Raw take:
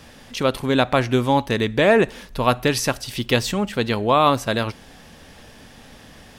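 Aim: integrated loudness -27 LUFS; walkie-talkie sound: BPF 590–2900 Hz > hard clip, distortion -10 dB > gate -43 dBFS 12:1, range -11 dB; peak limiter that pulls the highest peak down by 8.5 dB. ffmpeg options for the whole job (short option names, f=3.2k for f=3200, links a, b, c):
-af "alimiter=limit=-11.5dB:level=0:latency=1,highpass=590,lowpass=2.9k,asoftclip=type=hard:threshold=-21.5dB,agate=range=-11dB:threshold=-43dB:ratio=12,volume=3dB"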